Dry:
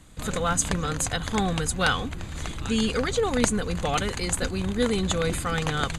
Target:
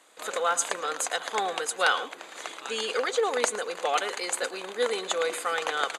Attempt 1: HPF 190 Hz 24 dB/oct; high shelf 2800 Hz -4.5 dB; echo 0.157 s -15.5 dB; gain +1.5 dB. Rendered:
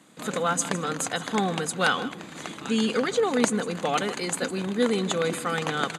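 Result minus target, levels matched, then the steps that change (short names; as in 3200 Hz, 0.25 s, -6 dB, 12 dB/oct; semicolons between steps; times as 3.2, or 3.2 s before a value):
250 Hz band +15.5 dB; echo 46 ms late
change: HPF 440 Hz 24 dB/oct; change: echo 0.111 s -15.5 dB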